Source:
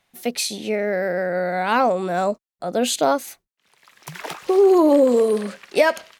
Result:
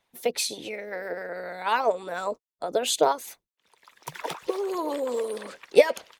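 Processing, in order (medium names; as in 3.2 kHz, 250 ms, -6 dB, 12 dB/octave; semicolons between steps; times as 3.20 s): small resonant body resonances 480/940/3500 Hz, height 9 dB, ringing for 30 ms; harmonic-percussive split harmonic -17 dB; trim -2 dB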